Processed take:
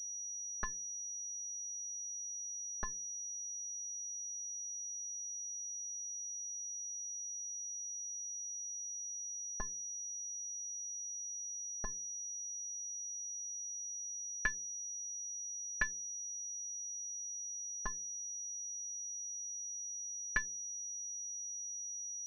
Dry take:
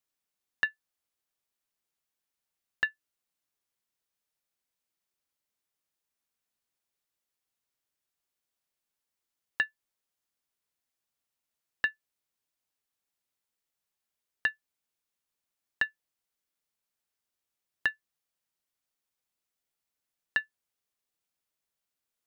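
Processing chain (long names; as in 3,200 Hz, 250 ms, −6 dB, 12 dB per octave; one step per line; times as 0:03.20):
lower of the sound and its delayed copy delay 4.8 ms
hum removal 85.78 Hz, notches 6
brickwall limiter −18 dBFS, peak gain reduction 4 dB
auto-filter low-pass saw up 2.2 Hz 730–2,100 Hz
switching amplifier with a slow clock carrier 5,800 Hz
level −3 dB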